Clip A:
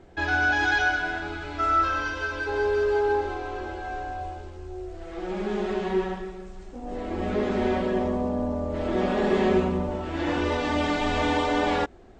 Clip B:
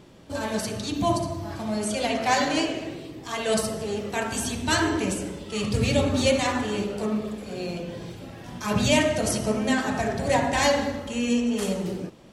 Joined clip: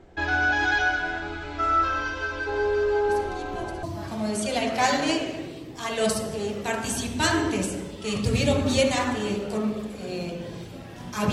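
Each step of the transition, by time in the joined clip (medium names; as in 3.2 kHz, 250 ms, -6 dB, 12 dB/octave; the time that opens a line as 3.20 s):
clip A
3.09 s: add clip B from 0.57 s 0.74 s -14 dB
3.83 s: go over to clip B from 1.31 s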